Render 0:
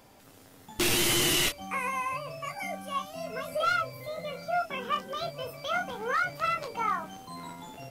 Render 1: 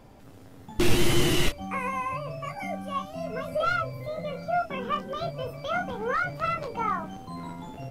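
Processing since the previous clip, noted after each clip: tilt EQ -2.5 dB/octave; trim +1.5 dB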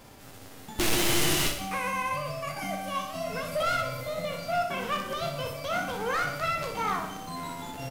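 formants flattened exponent 0.6; saturation -22 dBFS, distortion -7 dB; on a send: feedback delay 61 ms, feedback 59%, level -8.5 dB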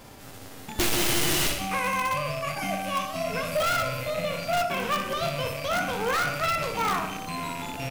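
rattle on loud lows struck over -43 dBFS, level -31 dBFS; in parallel at -5.5 dB: integer overflow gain 22.5 dB

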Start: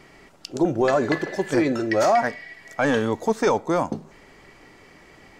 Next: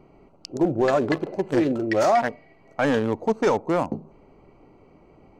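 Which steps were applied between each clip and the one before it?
local Wiener filter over 25 samples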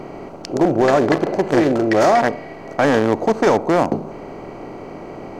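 spectral levelling over time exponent 0.6; trim +3 dB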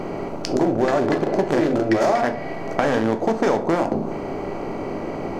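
compression, threshold -21 dBFS, peak gain reduction 10.5 dB; reverberation RT60 0.55 s, pre-delay 5 ms, DRR 6.5 dB; trim +3.5 dB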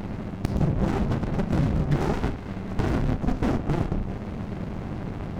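frequency shift -190 Hz; mains buzz 100 Hz, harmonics 28, -37 dBFS -5 dB/octave; sliding maximum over 65 samples; trim -2.5 dB

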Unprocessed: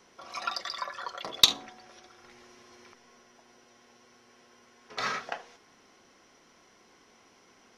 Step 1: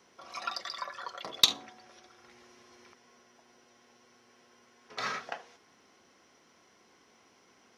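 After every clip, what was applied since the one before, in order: high-pass 59 Hz; trim -3 dB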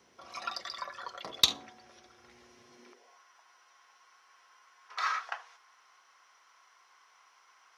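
high-pass sweep 62 Hz -> 1.1 kHz, 2.54–3.21 s; trim -1.5 dB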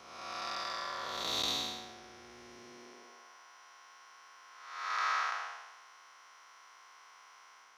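spectral blur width 407 ms; trim +7 dB

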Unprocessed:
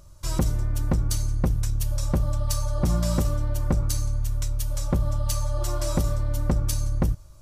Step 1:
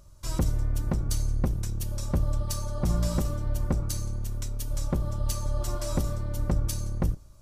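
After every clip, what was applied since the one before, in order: octave divider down 1 oct, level -6 dB; trim -4 dB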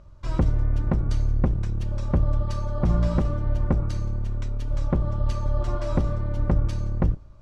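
low-pass 2.5 kHz 12 dB/octave; trim +4.5 dB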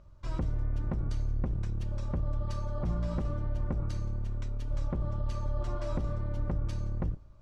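peak limiter -17 dBFS, peak gain reduction 6.5 dB; trim -6.5 dB

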